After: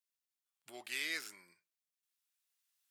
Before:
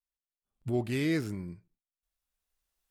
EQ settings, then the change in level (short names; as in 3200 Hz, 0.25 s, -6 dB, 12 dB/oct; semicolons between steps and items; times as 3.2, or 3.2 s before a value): Bessel high-pass 2000 Hz, order 2; +2.5 dB